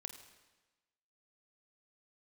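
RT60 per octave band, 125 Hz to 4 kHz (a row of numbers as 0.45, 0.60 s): 1.1, 1.2, 1.2, 1.2, 1.2, 1.1 s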